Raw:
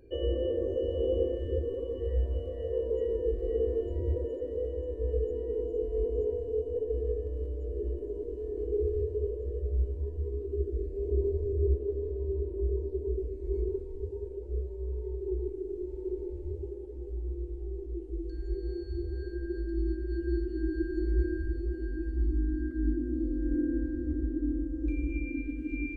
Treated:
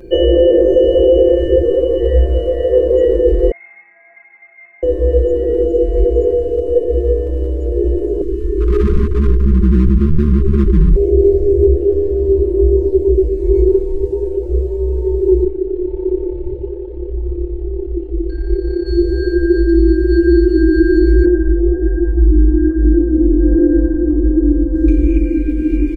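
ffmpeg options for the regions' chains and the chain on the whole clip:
-filter_complex "[0:a]asettb=1/sr,asplit=3[s0][s1][s2];[s0]atrim=end=3.514[s3];[s1]atrim=start=3.51:end=4.83,asetpts=PTS-STARTPTS,afade=t=in:d=0.004:c=qsin,afade=t=out:st=1.316:d=0.004:c=qsin,highpass=f=1100:w=0.5412,highpass=f=1100:w=1.3066,aeval=exprs='(tanh(79.4*val(0)+0.65)-tanh(0.65))/79.4':c=same,lowpass=f=2200:t=q:w=0.5098,lowpass=f=2200:t=q:w=0.6013,lowpass=f=2200:t=q:w=0.9,lowpass=f=2200:t=q:w=2.563,afreqshift=-2600[s4];[s2]atrim=start=4.826[s5];[s3][s4]acrossfade=d=0.004:c1=hsin:c2=qsin[s6];[s6][s5]acrossfade=d=0.004:c1=qsin:c2=hsin,asettb=1/sr,asplit=3[s7][s8][s9];[s7]atrim=end=8.214[s10];[s8]atrim=start=8.21:end=10.96,asetpts=PTS-STARTPTS,afade=t=in:d=0.004:c=qsin,afade=t=out:st=2.746:d=0.004:c=qsin,asubboost=boost=11:cutoff=140,volume=17.8,asoftclip=hard,volume=0.0562,asuperstop=centerf=670:order=12:qfactor=1.1[s11];[s9]atrim=start=10.956[s12];[s10][s11]acrossfade=d=0.004:c1=hsin:c2=qsin[s13];[s13][s12]acrossfade=d=0.004:c1=qsin:c2=hsin,asettb=1/sr,asplit=3[s14][s15][s16];[s14]atrim=end=15.444[s17];[s15]atrim=start=15.44:end=18.86,asetpts=PTS-STARTPTS,afade=t=in:d=0.004:c=qsin,afade=t=out:st=3.416:d=0.004:c=qsin,lowpass=f=3600:w=0.5412,lowpass=f=3600:w=1.3066,equalizer=f=220:t=o:w=0.76:g=-12,tremolo=f=34:d=0.621[s18];[s16]atrim=start=18.856[s19];[s17][s18]acrossfade=d=0.004:c1=hsin:c2=qsin[s20];[s20][s19]acrossfade=d=0.004:c1=qsin:c2=hsin,asettb=1/sr,asplit=3[s21][s22][s23];[s21]atrim=end=21.254[s24];[s22]atrim=start=21.25:end=24.75,asetpts=PTS-STARTPTS,afade=t=in:d=0.004:c=qsin,afade=t=out:st=3.496:d=0.004:c=qsin,lowpass=f=910:t=q:w=2.3,flanger=delay=17:depth=3.5:speed=1.2[s25];[s23]atrim=start=24.746[s26];[s24][s25]acrossfade=d=0.004:c1=hsin:c2=qsin[s27];[s27][s26]acrossfade=d=0.004:c1=qsin:c2=hsin,aecho=1:1:5.7:0.93,alimiter=level_in=9.44:limit=0.891:release=50:level=0:latency=1,volume=0.891"

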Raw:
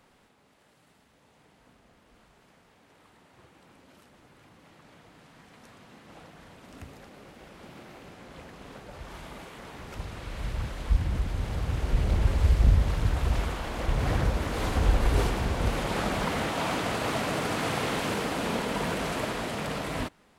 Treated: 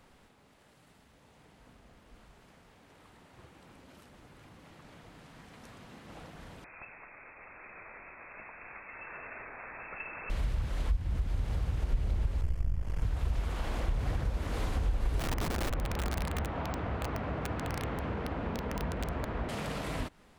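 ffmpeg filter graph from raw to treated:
-filter_complex "[0:a]asettb=1/sr,asplit=3[s0][s1][s2];[s0]atrim=end=6.644[s3];[s1]atrim=start=6.64:end=10.3,asetpts=PTS-STARTPTS,afade=t=in:d=0.004:c=qsin,afade=t=out:st=3.656:d=0.004:c=qsin,tiltshelf=f=940:g=-7.5,lowpass=f=2300:t=q:w=0.5098,lowpass=f=2300:t=q:w=0.6013,lowpass=f=2300:t=q:w=0.9,lowpass=f=2300:t=q:w=2.563,afreqshift=-2700[s4];[s2]atrim=start=10.296[s5];[s3][s4]acrossfade=d=0.004:c1=hsin:c2=qsin[s6];[s6][s5]acrossfade=d=0.004:c1=qsin:c2=hsin,asettb=1/sr,asplit=3[s7][s8][s9];[s7]atrim=end=12.414[s10];[s8]atrim=start=12.41:end=13.03,asetpts=PTS-STARTPTS,afade=t=in:d=0.004:c=qsin,afade=t=out:st=0.616:d=0.004:c=qsin,aeval=exprs='if(lt(val(0),0),0.251*val(0),val(0))':c=same,equalizer=f=3800:w=6.5:g=-15[s11];[s9]atrim=start=13.026[s12];[s10][s11]acrossfade=d=0.004:c1=hsin:c2=qsin[s13];[s13][s12]acrossfade=d=0.004:c1=qsin:c2=hsin,asettb=1/sr,asplit=3[s14][s15][s16];[s14]atrim=end=15.194[s17];[s15]atrim=start=15.19:end=19.49,asetpts=PTS-STARTPTS,afade=t=in:d=0.004:c=qsin,afade=t=out:st=4.296:d=0.004:c=qsin,lowpass=1800,equalizer=f=68:w=1.7:g=13.5,aeval=exprs='(mod(8.91*val(0)+1,2)-1)/8.91':c=same[s18];[s16]atrim=start=19.486[s19];[s17][s18]acrossfade=d=0.004:c1=hsin:c2=qsin[s20];[s20][s19]acrossfade=d=0.004:c1=qsin:c2=hsin,acompressor=threshold=0.02:ratio=6,lowshelf=f=79:g=10.5"

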